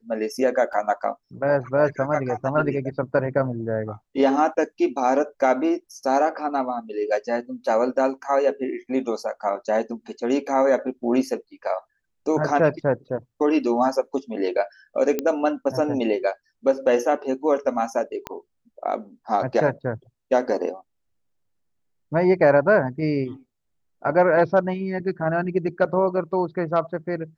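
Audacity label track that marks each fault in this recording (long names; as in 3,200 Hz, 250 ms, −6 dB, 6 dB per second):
0.730000	0.730000	drop-out 3.1 ms
15.190000	15.190000	click −10 dBFS
18.270000	18.270000	click −15 dBFS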